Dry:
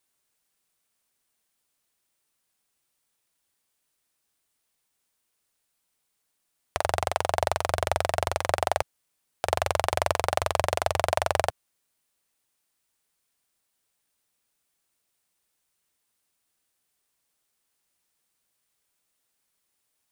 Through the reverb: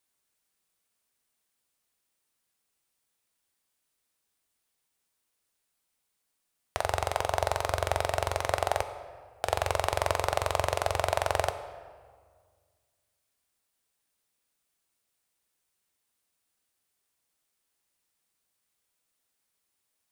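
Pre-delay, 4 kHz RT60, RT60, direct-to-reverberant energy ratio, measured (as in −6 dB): 4 ms, 1.1 s, 1.8 s, 8.5 dB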